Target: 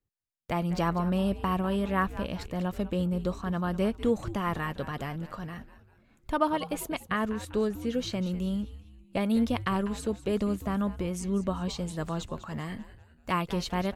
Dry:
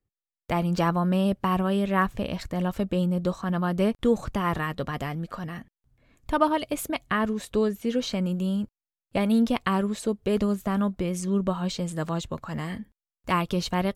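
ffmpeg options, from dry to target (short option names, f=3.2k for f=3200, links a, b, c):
-filter_complex "[0:a]asplit=5[a][b][c][d][e];[b]adelay=197,afreqshift=-130,volume=-14dB[f];[c]adelay=394,afreqshift=-260,volume=-21.7dB[g];[d]adelay=591,afreqshift=-390,volume=-29.5dB[h];[e]adelay=788,afreqshift=-520,volume=-37.2dB[i];[a][f][g][h][i]amix=inputs=5:normalize=0,volume=-4dB"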